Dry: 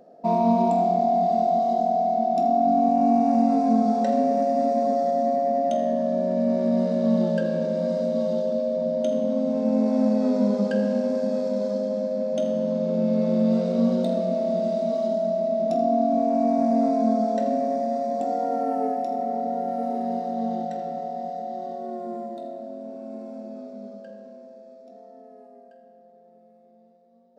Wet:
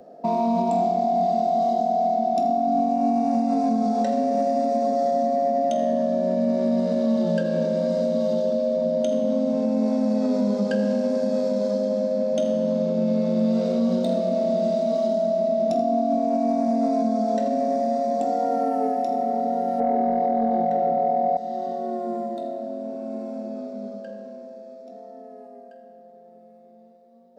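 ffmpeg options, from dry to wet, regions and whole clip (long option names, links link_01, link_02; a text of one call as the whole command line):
ffmpeg -i in.wav -filter_complex "[0:a]asettb=1/sr,asplit=3[link_01][link_02][link_03];[link_01]atrim=end=19.804[link_04];[link_02]atrim=start=19.8:end=21.37,asetpts=PTS-STARTPTS,afade=type=in:duration=0.004:curve=qsin,afade=type=out:start_time=1.566:duration=0.004:curve=qsin,lowpass=frequency=1200:poles=1,equalizer=frequency=660:width_type=o:width=2.6:gain=9,acontrast=65[link_05];[link_03]atrim=start=21.366[link_06];[link_04][link_05]acrossfade=duration=0.004:curve1=hsin:curve2=qsin[link_07];[link_07][link_06]acrossfade=duration=0.004:curve1=qsin:curve2=hsin,bandreject=frequency=60:width_type=h:width=6,bandreject=frequency=120:width_type=h:width=6,bandreject=frequency=180:width_type=h:width=6,acrossover=split=130|3000[link_08][link_09][link_10];[link_09]acompressor=threshold=-29dB:ratio=1.5[link_11];[link_08][link_11][link_10]amix=inputs=3:normalize=0,alimiter=limit=-19dB:level=0:latency=1:release=80,volume=5dB" out.wav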